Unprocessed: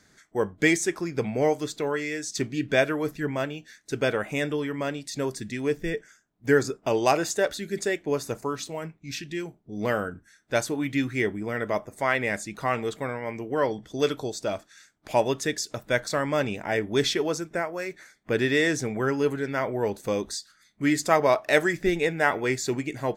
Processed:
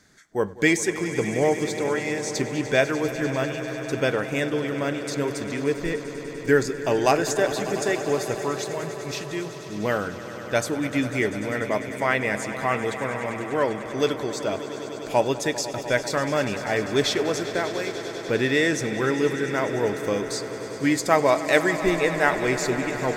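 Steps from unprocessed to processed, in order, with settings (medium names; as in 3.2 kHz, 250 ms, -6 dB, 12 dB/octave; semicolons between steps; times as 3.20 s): echo with a slow build-up 99 ms, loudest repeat 5, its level -15.5 dB; trim +1.5 dB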